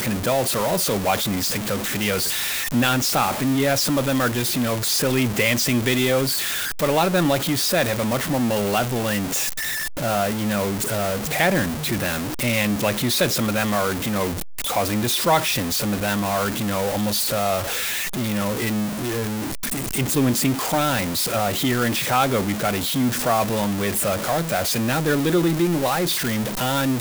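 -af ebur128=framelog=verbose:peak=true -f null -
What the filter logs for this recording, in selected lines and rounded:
Integrated loudness:
  I:         -21.2 LUFS
  Threshold: -31.2 LUFS
Loudness range:
  LRA:         2.7 LU
  Threshold: -41.2 LUFS
  LRA low:   -22.5 LUFS
  LRA high:  -19.8 LUFS
True peak:
  Peak:       -5.3 dBFS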